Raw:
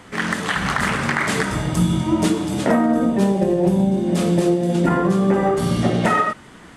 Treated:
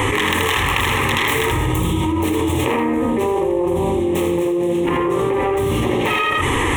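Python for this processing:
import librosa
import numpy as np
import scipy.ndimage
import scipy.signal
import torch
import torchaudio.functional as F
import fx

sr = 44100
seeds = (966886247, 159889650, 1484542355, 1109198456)

p1 = fx.self_delay(x, sr, depth_ms=0.26)
p2 = fx.peak_eq(p1, sr, hz=93.0, db=8.0, octaves=0.44)
p3 = fx.fixed_phaser(p2, sr, hz=980.0, stages=8)
p4 = p3 + fx.echo_single(p3, sr, ms=81, db=-5.5, dry=0)
p5 = fx.env_flatten(p4, sr, amount_pct=100)
y = F.gain(torch.from_numpy(p5), -2.5).numpy()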